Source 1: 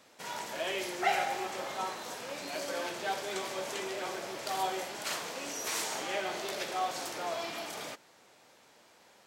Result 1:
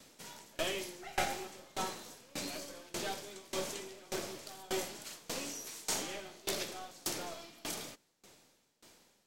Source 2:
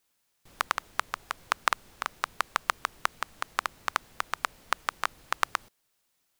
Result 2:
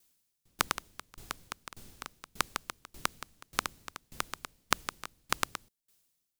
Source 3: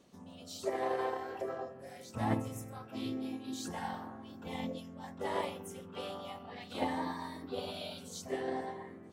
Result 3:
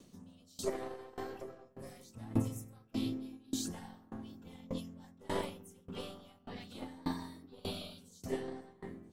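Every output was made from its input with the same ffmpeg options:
-filter_complex "[0:a]equalizer=f=1.4k:w=0.45:g=-9.5,acrossover=split=440|970[a][b][c];[b]aeval=exprs='max(val(0),0)':c=same[d];[a][d][c]amix=inputs=3:normalize=0,aeval=exprs='val(0)*pow(10,-25*if(lt(mod(1.7*n/s,1),2*abs(1.7)/1000),1-mod(1.7*n/s,1)/(2*abs(1.7)/1000),(mod(1.7*n/s,1)-2*abs(1.7)/1000)/(1-2*abs(1.7)/1000))/20)':c=same,volume=9.5dB"

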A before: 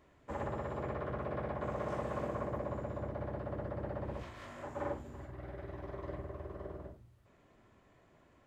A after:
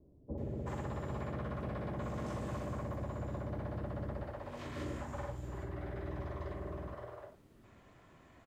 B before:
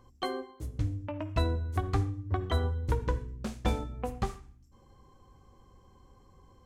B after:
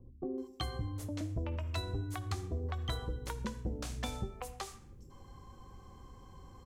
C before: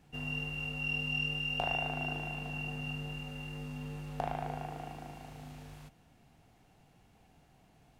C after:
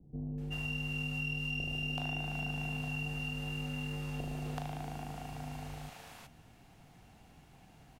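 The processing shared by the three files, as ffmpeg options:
-filter_complex "[0:a]acrossover=split=480[a][b];[b]adelay=380[c];[a][c]amix=inputs=2:normalize=0,acrossover=split=340|3400[d][e][f];[d]acompressor=threshold=-43dB:ratio=4[g];[e]acompressor=threshold=-50dB:ratio=4[h];[f]acompressor=threshold=-49dB:ratio=4[i];[g][h][i]amix=inputs=3:normalize=0,volume=5.5dB"

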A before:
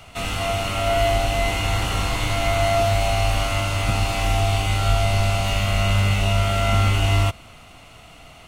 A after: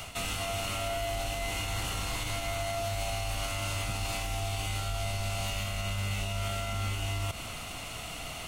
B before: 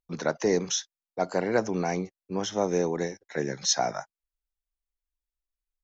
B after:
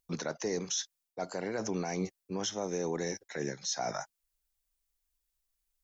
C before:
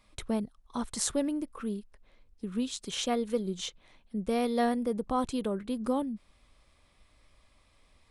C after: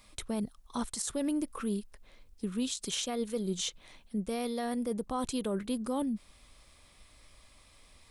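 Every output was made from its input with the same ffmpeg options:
-af "highshelf=f=4.2k:g=9.5,areverse,acompressor=threshold=-31dB:ratio=12,areverse,alimiter=level_in=3dB:limit=-24dB:level=0:latency=1:release=78,volume=-3dB,volume=3.5dB"

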